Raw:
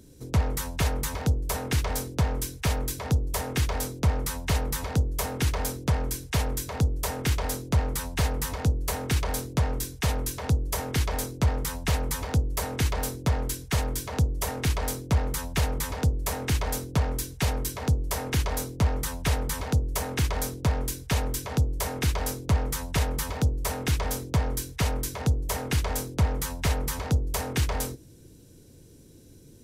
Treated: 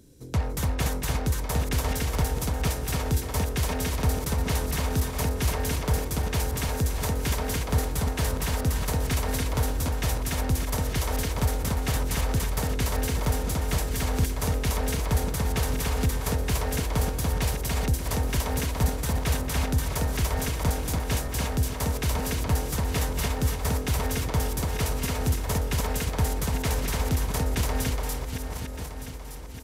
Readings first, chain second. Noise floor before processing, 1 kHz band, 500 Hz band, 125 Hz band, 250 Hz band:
−51 dBFS, +1.0 dB, +1.5 dB, +0.5 dB, +1.5 dB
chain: feedback delay that plays each chunk backwards 608 ms, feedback 62%, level −8 dB
loudspeakers that aren't time-aligned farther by 79 metres −9 dB, 99 metres −2 dB
level −2.5 dB

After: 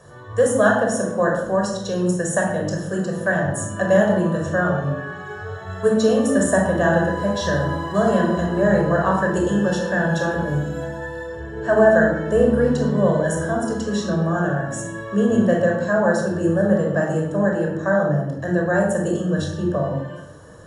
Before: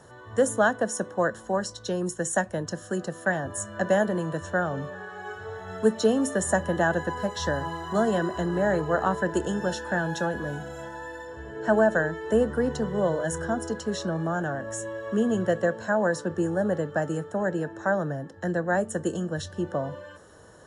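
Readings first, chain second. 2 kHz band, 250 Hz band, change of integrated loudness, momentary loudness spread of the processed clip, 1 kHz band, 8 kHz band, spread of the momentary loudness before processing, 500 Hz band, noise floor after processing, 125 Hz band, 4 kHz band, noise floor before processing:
+6.0 dB, +8.0 dB, +7.0 dB, 9 LU, +5.0 dB, +3.5 dB, 10 LU, +7.0 dB, −34 dBFS, +9.5 dB, +4.0 dB, −47 dBFS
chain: rectangular room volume 2,600 cubic metres, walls furnished, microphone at 5.6 metres

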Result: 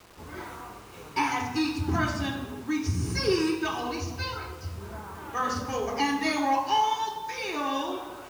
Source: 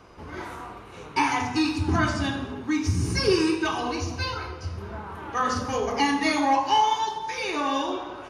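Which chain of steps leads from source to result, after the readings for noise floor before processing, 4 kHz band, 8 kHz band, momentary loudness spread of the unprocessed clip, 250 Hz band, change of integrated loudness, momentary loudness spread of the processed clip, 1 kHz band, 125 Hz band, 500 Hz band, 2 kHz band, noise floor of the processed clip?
−42 dBFS, −3.5 dB, −3.0 dB, 15 LU, −3.5 dB, −3.5 dB, 15 LU, −3.5 dB, −3.5 dB, −3.5 dB, −3.5 dB, −46 dBFS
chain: bit-depth reduction 8 bits, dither none
level −3.5 dB

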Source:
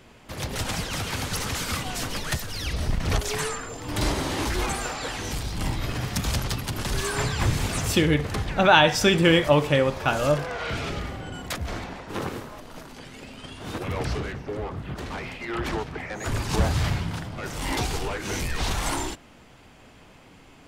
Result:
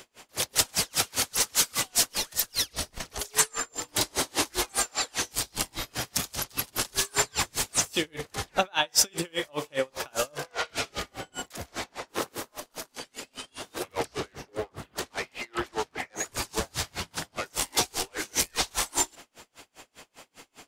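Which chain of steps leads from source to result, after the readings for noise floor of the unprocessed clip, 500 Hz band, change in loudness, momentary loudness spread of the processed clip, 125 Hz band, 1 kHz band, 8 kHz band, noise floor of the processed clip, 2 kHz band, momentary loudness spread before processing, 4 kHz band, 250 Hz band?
−51 dBFS, −8.0 dB, −2.5 dB, 13 LU, −16.0 dB, −6.0 dB, +7.0 dB, −69 dBFS, −5.5 dB, 15 LU, 0.0 dB, −11.0 dB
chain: downward compressor 6 to 1, threshold −24 dBFS, peak gain reduction 12.5 dB
bass and treble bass −13 dB, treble +10 dB
tremolo with a sine in dB 5 Hz, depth 36 dB
level +6 dB

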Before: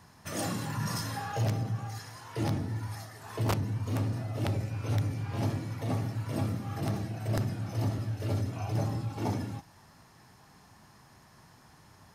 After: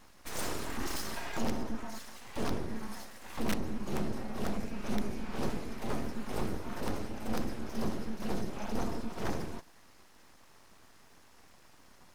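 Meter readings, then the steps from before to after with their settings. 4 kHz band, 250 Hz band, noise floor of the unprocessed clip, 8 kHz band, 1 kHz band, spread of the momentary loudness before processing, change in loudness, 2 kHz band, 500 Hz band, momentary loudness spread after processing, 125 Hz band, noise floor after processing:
−1.0 dB, −0.5 dB, −58 dBFS, −1.0 dB, −2.0 dB, 6 LU, −5.0 dB, 0.0 dB, −0.5 dB, 6 LU, −13.0 dB, −58 dBFS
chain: full-wave rectification

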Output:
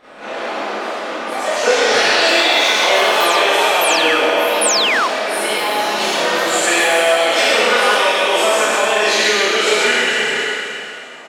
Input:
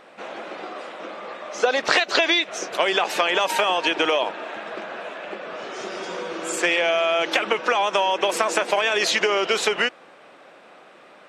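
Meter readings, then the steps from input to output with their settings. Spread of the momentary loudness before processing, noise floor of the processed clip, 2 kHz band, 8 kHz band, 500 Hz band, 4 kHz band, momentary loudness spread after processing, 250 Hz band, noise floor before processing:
15 LU, −31 dBFS, +9.0 dB, +12.5 dB, +8.0 dB, +9.5 dB, 11 LU, +6.5 dB, −49 dBFS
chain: peak hold with a decay on every bin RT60 2.56 s
downward compressor 3 to 1, threshold −20 dBFS, peak gain reduction 8 dB
on a send: single-tap delay 128 ms −4 dB
on the sum: four-comb reverb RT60 0.35 s, combs from 26 ms, DRR −9.5 dB
sound drawn into the spectrogram fall, 0:04.61–0:05.08, 940–11,000 Hz −12 dBFS
delay with pitch and tempo change per echo 149 ms, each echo +4 semitones, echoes 2, each echo −6 dB
level −4.5 dB

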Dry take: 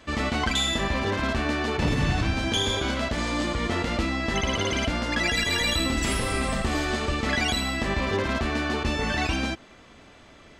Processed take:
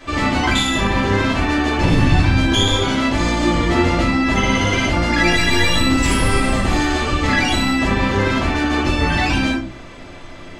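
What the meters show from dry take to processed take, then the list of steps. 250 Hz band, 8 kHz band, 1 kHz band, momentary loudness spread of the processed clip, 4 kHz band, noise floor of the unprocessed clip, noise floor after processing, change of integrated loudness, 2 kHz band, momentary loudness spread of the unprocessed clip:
+10.5 dB, +6.0 dB, +9.5 dB, 3 LU, +6.5 dB, −51 dBFS, −36 dBFS, +8.5 dB, +8.0 dB, 3 LU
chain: in parallel at −0.5 dB: downward compressor, threshold −35 dBFS, peak gain reduction 14.5 dB
on the sum: rectangular room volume 200 cubic metres, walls furnished, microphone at 3.8 metres
level −1.5 dB

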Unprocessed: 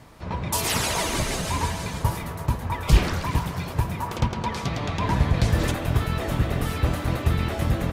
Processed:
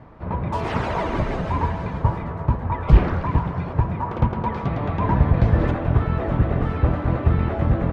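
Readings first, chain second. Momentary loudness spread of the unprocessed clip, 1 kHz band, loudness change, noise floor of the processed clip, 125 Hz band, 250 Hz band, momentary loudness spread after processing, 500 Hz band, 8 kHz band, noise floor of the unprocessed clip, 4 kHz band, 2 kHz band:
7 LU, +3.0 dB, +3.0 dB, −30 dBFS, +4.0 dB, +4.0 dB, 7 LU, +4.0 dB, below −25 dB, −34 dBFS, below −10 dB, −2.5 dB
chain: low-pass filter 1,400 Hz 12 dB per octave
level +4 dB

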